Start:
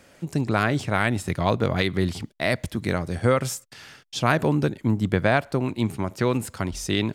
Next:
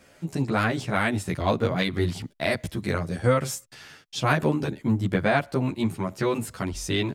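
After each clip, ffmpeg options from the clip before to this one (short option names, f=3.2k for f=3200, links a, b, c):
-filter_complex "[0:a]asplit=2[a][b];[b]adelay=11.7,afreqshift=2.1[c];[a][c]amix=inputs=2:normalize=1,volume=1.5dB"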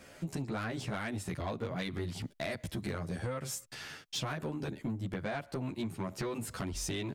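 -af "acompressor=threshold=-32dB:ratio=12,asoftclip=type=tanh:threshold=-29dB,volume=1dB"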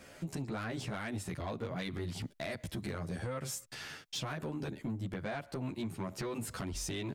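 -af "alimiter=level_in=7dB:limit=-24dB:level=0:latency=1:release=105,volume=-7dB"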